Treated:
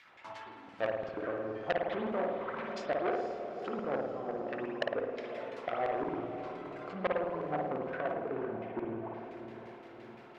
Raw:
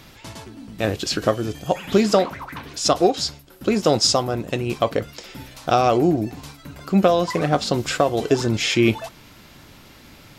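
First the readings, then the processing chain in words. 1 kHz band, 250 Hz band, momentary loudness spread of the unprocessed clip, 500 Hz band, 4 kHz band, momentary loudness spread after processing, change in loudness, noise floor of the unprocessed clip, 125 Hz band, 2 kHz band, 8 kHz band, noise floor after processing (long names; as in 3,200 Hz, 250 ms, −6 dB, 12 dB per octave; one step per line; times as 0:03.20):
−13.5 dB, −18.0 dB, 20 LU, −13.0 dB, −26.5 dB, 13 LU, −16.0 dB, −47 dBFS, −22.5 dB, −11.5 dB, below −35 dB, −52 dBFS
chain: leveller curve on the samples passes 1
treble cut that deepens with the level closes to 420 Hz, closed at −14.5 dBFS
flanger 0.36 Hz, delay 8.2 ms, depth 4.4 ms, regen −72%
auto-filter band-pass saw down 5.8 Hz 570–2,300 Hz
feedback delay with all-pass diffusion 472 ms, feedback 58%, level −10 dB
spring reverb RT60 1.1 s, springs 53 ms, chirp 65 ms, DRR 0 dB
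saturating transformer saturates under 1,800 Hz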